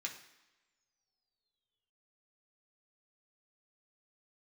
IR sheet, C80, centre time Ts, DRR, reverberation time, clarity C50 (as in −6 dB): 12.0 dB, 20 ms, −0.5 dB, non-exponential decay, 9.0 dB